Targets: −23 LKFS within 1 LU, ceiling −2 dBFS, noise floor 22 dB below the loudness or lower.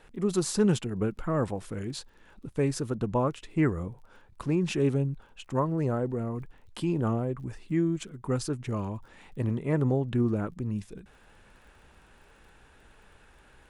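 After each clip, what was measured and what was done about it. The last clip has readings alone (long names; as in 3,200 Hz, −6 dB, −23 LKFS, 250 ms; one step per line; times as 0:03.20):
crackle rate 26 per second; integrated loudness −30.0 LKFS; sample peak −12.5 dBFS; target loudness −23.0 LKFS
→ click removal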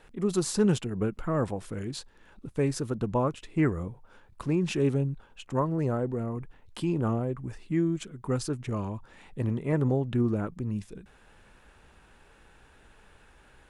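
crackle rate 0.073 per second; integrated loudness −30.0 LKFS; sample peak −12.5 dBFS; target loudness −23.0 LKFS
→ level +7 dB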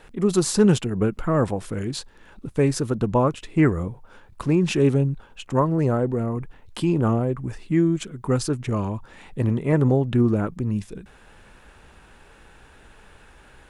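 integrated loudness −23.0 LKFS; sample peak −5.5 dBFS; background noise floor −51 dBFS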